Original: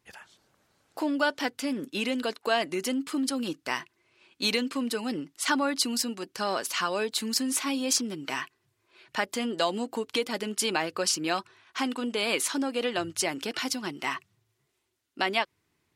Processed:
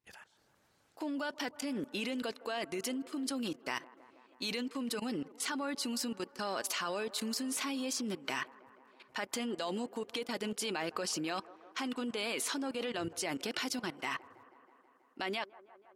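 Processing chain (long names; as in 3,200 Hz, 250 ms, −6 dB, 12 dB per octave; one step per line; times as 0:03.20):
output level in coarse steps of 18 dB
delay with a band-pass on its return 161 ms, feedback 74%, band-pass 700 Hz, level −18 dB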